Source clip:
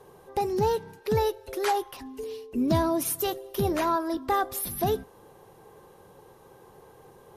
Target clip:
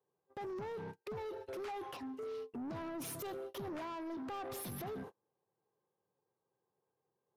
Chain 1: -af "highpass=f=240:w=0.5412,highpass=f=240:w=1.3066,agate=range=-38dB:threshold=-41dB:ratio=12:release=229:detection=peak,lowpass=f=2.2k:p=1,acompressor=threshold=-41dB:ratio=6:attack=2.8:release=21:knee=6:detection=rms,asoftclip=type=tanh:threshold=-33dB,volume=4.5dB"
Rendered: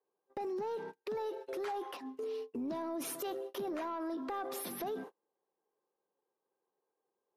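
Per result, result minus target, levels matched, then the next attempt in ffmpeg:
125 Hz band -13.5 dB; soft clip: distortion -14 dB
-af "highpass=f=100:w=0.5412,highpass=f=100:w=1.3066,agate=range=-38dB:threshold=-41dB:ratio=12:release=229:detection=peak,lowpass=f=2.2k:p=1,acompressor=threshold=-41dB:ratio=6:attack=2.8:release=21:knee=6:detection=rms,asoftclip=type=tanh:threshold=-33dB,volume=4.5dB"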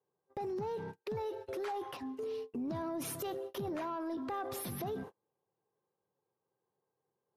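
soft clip: distortion -15 dB
-af "highpass=f=100:w=0.5412,highpass=f=100:w=1.3066,agate=range=-38dB:threshold=-41dB:ratio=12:release=229:detection=peak,lowpass=f=2.2k:p=1,acompressor=threshold=-41dB:ratio=6:attack=2.8:release=21:knee=6:detection=rms,asoftclip=type=tanh:threshold=-44dB,volume=4.5dB"

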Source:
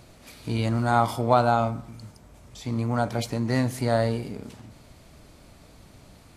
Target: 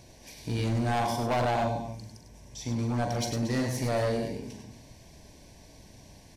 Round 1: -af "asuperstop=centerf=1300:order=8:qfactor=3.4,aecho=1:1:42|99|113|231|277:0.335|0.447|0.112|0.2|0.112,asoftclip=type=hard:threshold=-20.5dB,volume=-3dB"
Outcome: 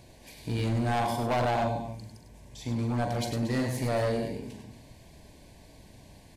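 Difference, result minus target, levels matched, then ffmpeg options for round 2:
8000 Hz band -4.0 dB
-af "asuperstop=centerf=1300:order=8:qfactor=3.4,equalizer=f=5.7k:t=o:w=0.23:g=12,aecho=1:1:42|99|113|231|277:0.335|0.447|0.112|0.2|0.112,asoftclip=type=hard:threshold=-20.5dB,volume=-3dB"

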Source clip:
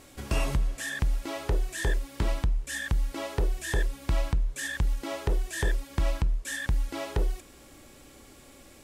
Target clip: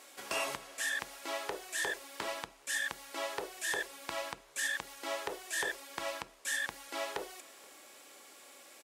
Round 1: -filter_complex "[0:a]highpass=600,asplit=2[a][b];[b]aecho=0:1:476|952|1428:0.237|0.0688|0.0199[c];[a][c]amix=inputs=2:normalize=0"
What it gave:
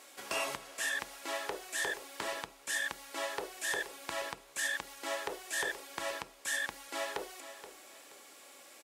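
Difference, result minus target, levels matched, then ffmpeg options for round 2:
echo-to-direct +12 dB
-filter_complex "[0:a]highpass=600,asplit=2[a][b];[b]aecho=0:1:476|952:0.0596|0.0173[c];[a][c]amix=inputs=2:normalize=0"

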